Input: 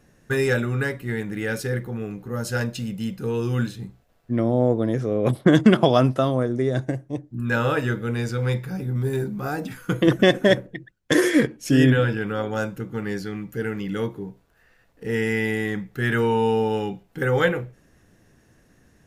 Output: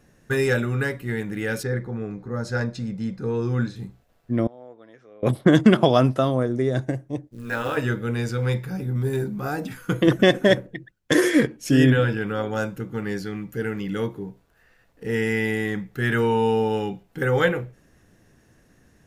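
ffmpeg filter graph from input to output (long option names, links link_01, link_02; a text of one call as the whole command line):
ffmpeg -i in.wav -filter_complex "[0:a]asettb=1/sr,asplit=3[link_01][link_02][link_03];[link_01]atrim=end=1.634[link_04];[link_02]atrim=start=1.63:end=3.76,asetpts=PTS-STARTPTS,afade=type=in:duration=0.004:curve=qsin,afade=type=out:start_time=2.126:duration=0.004:curve=qsin,lowpass=5000,equalizer=frequency=2900:width_type=o:width=0.31:gain=-15[link_05];[link_03]atrim=start=3.756[link_06];[link_04][link_05]acrossfade=duration=0.004:curve1=hsin:curve2=qsin[link_07];[link_07][link_06]acrossfade=duration=0.004:curve1=qsin:curve2=hsin,asettb=1/sr,asplit=3[link_08][link_09][link_10];[link_08]atrim=end=4.474[link_11];[link_09]atrim=start=4.47:end=5.23,asetpts=PTS-STARTPTS,afade=type=in:duration=0.004:curve=qsin,afade=type=out:start_time=0.756:duration=0.004:curve=qsin,lowpass=1900,aderivative[link_12];[link_10]atrim=start=5.226[link_13];[link_11][link_12]acrossfade=duration=0.004:curve1=hsin:curve2=qsin[link_14];[link_14][link_13]acrossfade=duration=0.004:curve1=qsin:curve2=hsin,asettb=1/sr,asplit=3[link_15][link_16][link_17];[link_15]atrim=end=7.274[link_18];[link_16]atrim=start=7.27:end=7.77,asetpts=PTS-STARTPTS,afade=type=in:duration=0.004:curve=qsin,afade=type=out:start_time=0.496:duration=0.004:curve=qsin,lowshelf=frequency=190:gain=-11,tremolo=f=230:d=0.667,acrusher=bits=6:mode=log:mix=0:aa=0.000001[link_19];[link_17]atrim=start=7.766[link_20];[link_18][link_19]acrossfade=duration=0.004:curve1=hsin:curve2=qsin[link_21];[link_21][link_20]acrossfade=duration=0.004:curve1=qsin:curve2=hsin" out.wav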